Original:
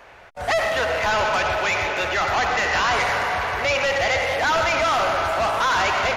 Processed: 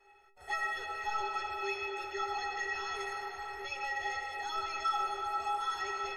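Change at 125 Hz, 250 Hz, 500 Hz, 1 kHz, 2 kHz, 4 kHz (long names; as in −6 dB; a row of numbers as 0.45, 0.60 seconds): below −25 dB, −18.0 dB, −21.0 dB, −13.5 dB, −16.5 dB, −16.5 dB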